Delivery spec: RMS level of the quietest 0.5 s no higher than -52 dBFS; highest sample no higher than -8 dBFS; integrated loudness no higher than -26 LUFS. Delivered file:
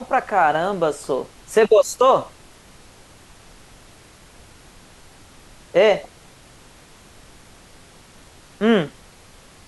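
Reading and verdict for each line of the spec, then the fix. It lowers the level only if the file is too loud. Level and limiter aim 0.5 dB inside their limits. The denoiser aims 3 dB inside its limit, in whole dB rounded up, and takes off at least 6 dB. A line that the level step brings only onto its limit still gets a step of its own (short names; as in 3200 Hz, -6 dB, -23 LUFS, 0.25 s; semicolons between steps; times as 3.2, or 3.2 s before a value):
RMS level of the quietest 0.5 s -47 dBFS: fail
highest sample -5.5 dBFS: fail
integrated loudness -19.0 LUFS: fail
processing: gain -7.5 dB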